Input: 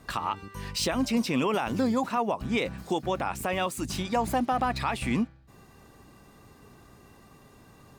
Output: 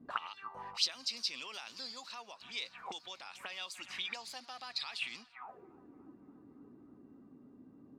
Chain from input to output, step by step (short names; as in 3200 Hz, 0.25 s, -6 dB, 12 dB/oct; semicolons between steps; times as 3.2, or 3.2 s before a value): narrowing echo 0.288 s, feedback 83%, band-pass 1300 Hz, level -19 dB; auto-wah 220–4600 Hz, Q 4.8, up, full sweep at -26 dBFS; gain +6 dB